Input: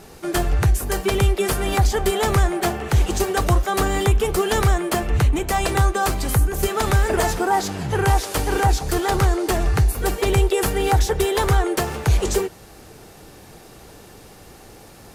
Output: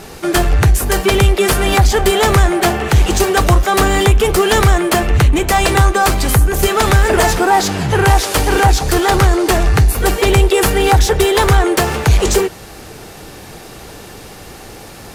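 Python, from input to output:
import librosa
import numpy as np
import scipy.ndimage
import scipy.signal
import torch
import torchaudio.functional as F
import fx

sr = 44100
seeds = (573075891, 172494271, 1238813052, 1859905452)

p1 = fx.peak_eq(x, sr, hz=2600.0, db=3.0, octaves=2.4)
p2 = np.clip(p1, -10.0 ** (-22.5 / 20.0), 10.0 ** (-22.5 / 20.0))
p3 = p1 + (p2 * librosa.db_to_amplitude(-3.0))
y = p3 * librosa.db_to_amplitude(4.5)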